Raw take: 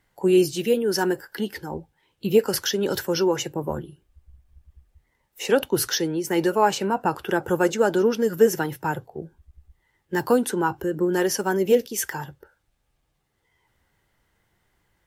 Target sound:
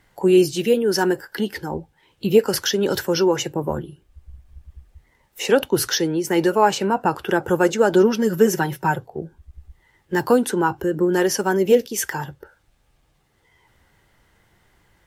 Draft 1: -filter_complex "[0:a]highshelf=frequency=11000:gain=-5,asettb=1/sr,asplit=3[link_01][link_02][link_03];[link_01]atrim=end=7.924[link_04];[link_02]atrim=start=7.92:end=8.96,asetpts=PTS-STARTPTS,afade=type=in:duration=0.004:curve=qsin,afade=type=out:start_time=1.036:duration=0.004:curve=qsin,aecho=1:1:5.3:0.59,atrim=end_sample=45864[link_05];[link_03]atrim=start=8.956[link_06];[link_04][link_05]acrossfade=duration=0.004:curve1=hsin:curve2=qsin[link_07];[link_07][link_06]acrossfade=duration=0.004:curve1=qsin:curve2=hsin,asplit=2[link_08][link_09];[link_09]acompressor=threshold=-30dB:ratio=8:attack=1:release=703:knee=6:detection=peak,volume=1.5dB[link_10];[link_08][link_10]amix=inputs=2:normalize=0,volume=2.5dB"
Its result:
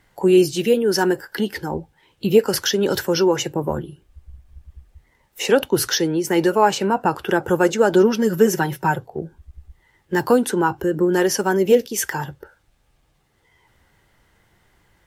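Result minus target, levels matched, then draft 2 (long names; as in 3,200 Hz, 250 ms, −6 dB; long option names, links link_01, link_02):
downward compressor: peak gain reduction −6 dB
-filter_complex "[0:a]highshelf=frequency=11000:gain=-5,asettb=1/sr,asplit=3[link_01][link_02][link_03];[link_01]atrim=end=7.924[link_04];[link_02]atrim=start=7.92:end=8.96,asetpts=PTS-STARTPTS,afade=type=in:duration=0.004:curve=qsin,afade=type=out:start_time=1.036:duration=0.004:curve=qsin,aecho=1:1:5.3:0.59,atrim=end_sample=45864[link_05];[link_03]atrim=start=8.956[link_06];[link_04][link_05]acrossfade=duration=0.004:curve1=hsin:curve2=qsin[link_07];[link_07][link_06]acrossfade=duration=0.004:curve1=qsin:curve2=hsin,asplit=2[link_08][link_09];[link_09]acompressor=threshold=-37dB:ratio=8:attack=1:release=703:knee=6:detection=peak,volume=1.5dB[link_10];[link_08][link_10]amix=inputs=2:normalize=0,volume=2.5dB"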